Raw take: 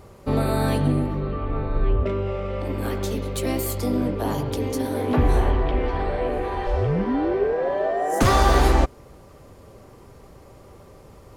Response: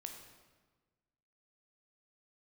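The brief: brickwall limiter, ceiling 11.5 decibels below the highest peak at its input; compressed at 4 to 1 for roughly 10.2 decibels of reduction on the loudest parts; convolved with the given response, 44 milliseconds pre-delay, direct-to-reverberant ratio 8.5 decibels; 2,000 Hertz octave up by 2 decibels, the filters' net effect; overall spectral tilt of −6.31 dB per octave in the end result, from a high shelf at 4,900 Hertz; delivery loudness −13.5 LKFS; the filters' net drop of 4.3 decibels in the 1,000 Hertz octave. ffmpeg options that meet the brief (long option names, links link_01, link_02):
-filter_complex "[0:a]equalizer=frequency=1000:width_type=o:gain=-7,equalizer=frequency=2000:width_type=o:gain=6,highshelf=frequency=4900:gain=-8,acompressor=threshold=-26dB:ratio=4,alimiter=level_in=2dB:limit=-24dB:level=0:latency=1,volume=-2dB,asplit=2[link_01][link_02];[1:a]atrim=start_sample=2205,adelay=44[link_03];[link_02][link_03]afir=irnorm=-1:irlink=0,volume=-5dB[link_04];[link_01][link_04]amix=inputs=2:normalize=0,volume=21dB"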